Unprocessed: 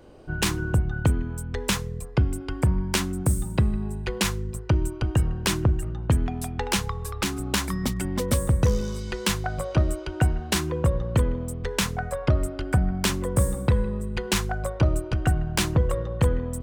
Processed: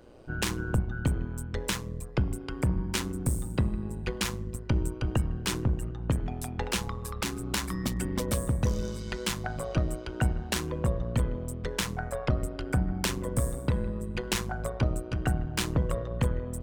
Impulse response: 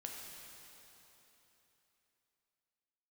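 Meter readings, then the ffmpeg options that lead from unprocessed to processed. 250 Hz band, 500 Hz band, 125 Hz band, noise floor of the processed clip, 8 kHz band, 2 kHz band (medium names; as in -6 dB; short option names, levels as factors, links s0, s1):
-4.5 dB, -5.0 dB, -5.5 dB, -39 dBFS, -5.0 dB, -5.0 dB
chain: -af "bandreject=f=49.22:t=h:w=4,bandreject=f=98.44:t=h:w=4,bandreject=f=147.66:t=h:w=4,bandreject=f=196.88:t=h:w=4,bandreject=f=246.1:t=h:w=4,bandreject=f=295.32:t=h:w=4,bandreject=f=344.54:t=h:w=4,bandreject=f=393.76:t=h:w=4,bandreject=f=442.98:t=h:w=4,bandreject=f=492.2:t=h:w=4,bandreject=f=541.42:t=h:w=4,bandreject=f=590.64:t=h:w=4,bandreject=f=639.86:t=h:w=4,bandreject=f=689.08:t=h:w=4,bandreject=f=738.3:t=h:w=4,bandreject=f=787.52:t=h:w=4,bandreject=f=836.74:t=h:w=4,bandreject=f=885.96:t=h:w=4,bandreject=f=935.18:t=h:w=4,bandreject=f=984.4:t=h:w=4,bandreject=f=1033.62:t=h:w=4,bandreject=f=1082.84:t=h:w=4,bandreject=f=1132.06:t=h:w=4,alimiter=limit=0.2:level=0:latency=1:release=456,tremolo=f=120:d=0.667"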